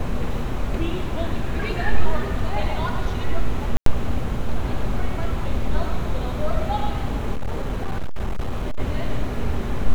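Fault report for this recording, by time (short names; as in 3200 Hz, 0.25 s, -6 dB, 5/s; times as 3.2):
3.77–3.86 gap 93 ms
7.34–8.8 clipped -19 dBFS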